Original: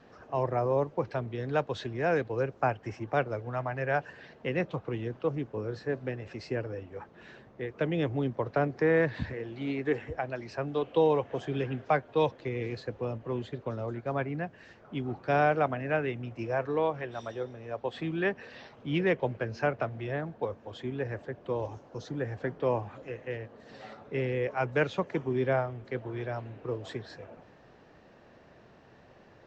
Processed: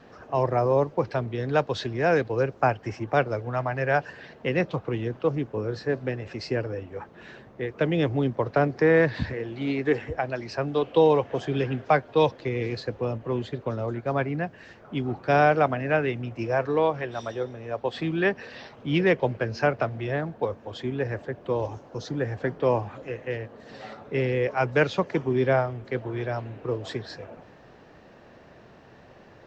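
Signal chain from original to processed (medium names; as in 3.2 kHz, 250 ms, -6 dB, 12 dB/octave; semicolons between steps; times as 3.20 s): dynamic bell 4.9 kHz, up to +6 dB, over -59 dBFS, Q 2.3; trim +5.5 dB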